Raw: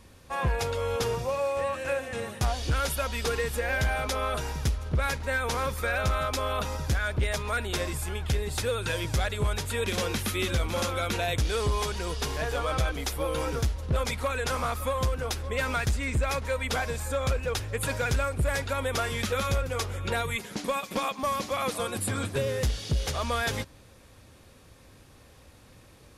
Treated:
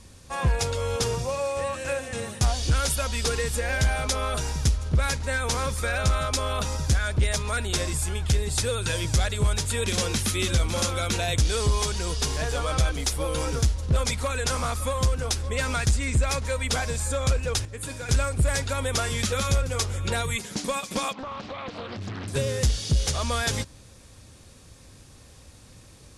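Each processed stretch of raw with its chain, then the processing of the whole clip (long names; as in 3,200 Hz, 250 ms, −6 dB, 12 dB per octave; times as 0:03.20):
0:17.65–0:18.09: parametric band 310 Hz +9 dB 0.4 octaves + tuned comb filter 85 Hz, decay 1 s, mix 70%
0:21.13–0:22.28: low-pass filter 3,500 Hz 24 dB per octave + downward compressor 5 to 1, threshold −33 dBFS + highs frequency-modulated by the lows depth 0.75 ms
whole clip: low-pass filter 10,000 Hz 24 dB per octave; bass and treble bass +5 dB, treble +10 dB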